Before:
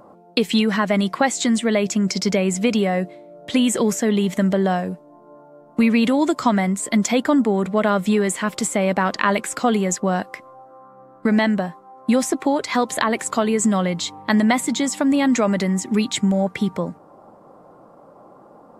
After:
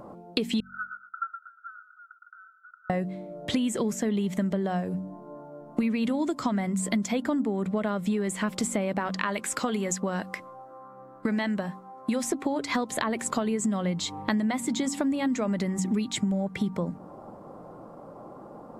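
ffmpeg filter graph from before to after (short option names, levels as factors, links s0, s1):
-filter_complex "[0:a]asettb=1/sr,asplit=3[s0][s1][s2];[s0]atrim=end=0.604[s3];[s1]atrim=start=0.6:end=2.9,asetpts=PTS-STARTPTS,afade=t=in:d=0.004:c=qsin,afade=t=out:st=2.296:d=0.004:c=qsin,asuperpass=centerf=1400:order=12:qfactor=5.6,aecho=1:1:119|238|357:0.316|0.0854|0.0231,atrim=end_sample=101430[s4];[s2]atrim=start=2.896[s5];[s3][s4]acrossfade=d=0.004:c1=hsin:c2=qsin[s6];[s6][s5]acrossfade=d=0.004:c1=qsin:c2=hsin,asettb=1/sr,asplit=3[s7][s8][s9];[s7]atrim=end=9.094[s10];[s8]atrim=start=9.09:end=12.24,asetpts=PTS-STARTPTS,afade=t=in:d=0.004:c=qsin,afade=t=out:st=3.146:d=0.004:c=qsin,lowshelf=f=460:g=-7.5,bandreject=f=710:w=9.9[s11];[s9]atrim=start=12.236[s12];[s10][s11]acrossfade=d=0.004:c1=hsin:c2=qsin[s13];[s13][s12]acrossfade=d=0.004:c1=qsin:c2=hsin,lowshelf=f=280:g=8,bandreject=f=46.95:t=h:w=4,bandreject=f=93.9:t=h:w=4,bandreject=f=140.85:t=h:w=4,bandreject=f=187.8:t=h:w=4,bandreject=f=234.75:t=h:w=4,bandreject=f=281.7:t=h:w=4,acompressor=threshold=0.0562:ratio=6"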